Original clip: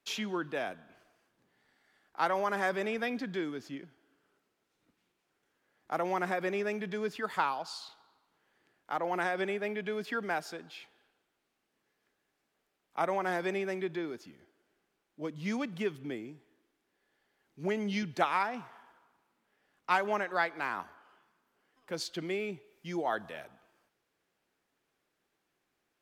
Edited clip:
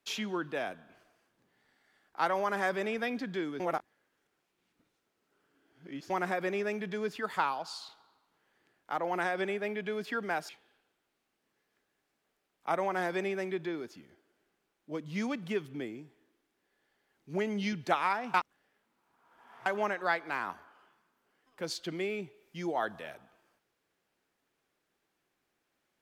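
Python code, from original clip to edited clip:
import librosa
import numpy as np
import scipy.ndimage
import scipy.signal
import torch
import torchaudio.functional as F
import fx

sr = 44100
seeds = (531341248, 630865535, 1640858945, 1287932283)

y = fx.edit(x, sr, fx.reverse_span(start_s=3.6, length_s=2.5),
    fx.cut(start_s=10.49, length_s=0.3),
    fx.reverse_span(start_s=18.64, length_s=1.32), tone=tone)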